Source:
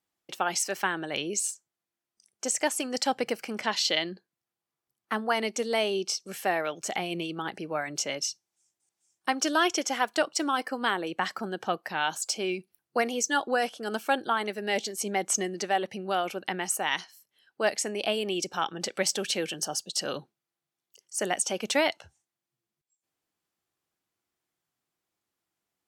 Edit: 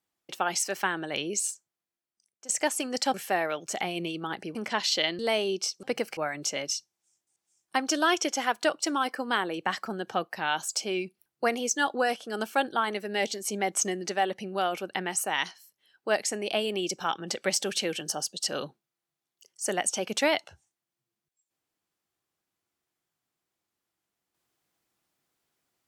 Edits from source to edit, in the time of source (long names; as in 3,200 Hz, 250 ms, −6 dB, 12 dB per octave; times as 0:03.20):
0:01.52–0:02.49: fade out, to −18 dB
0:03.14–0:03.48: swap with 0:06.29–0:07.70
0:04.12–0:05.65: remove